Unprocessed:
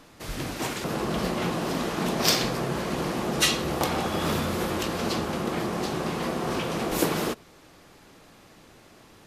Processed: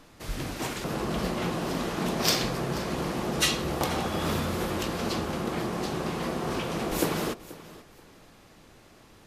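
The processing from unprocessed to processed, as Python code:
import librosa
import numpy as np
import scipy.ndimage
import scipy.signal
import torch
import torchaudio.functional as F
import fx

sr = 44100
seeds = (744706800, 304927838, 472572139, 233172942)

y = fx.low_shelf(x, sr, hz=71.0, db=7.0)
y = fx.echo_feedback(y, sr, ms=483, feedback_pct=23, wet_db=-18)
y = F.gain(torch.from_numpy(y), -2.5).numpy()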